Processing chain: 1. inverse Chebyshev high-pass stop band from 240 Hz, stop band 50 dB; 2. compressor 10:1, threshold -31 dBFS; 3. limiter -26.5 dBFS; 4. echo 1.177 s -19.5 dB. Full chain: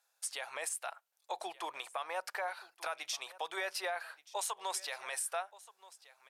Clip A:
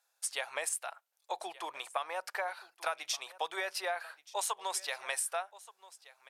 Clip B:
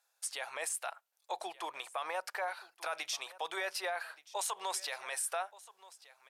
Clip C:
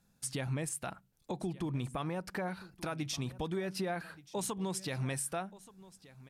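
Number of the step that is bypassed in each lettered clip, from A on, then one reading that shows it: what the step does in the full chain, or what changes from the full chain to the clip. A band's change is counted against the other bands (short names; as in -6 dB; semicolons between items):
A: 3, crest factor change +5.5 dB; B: 2, mean gain reduction 3.5 dB; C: 1, 250 Hz band +24.0 dB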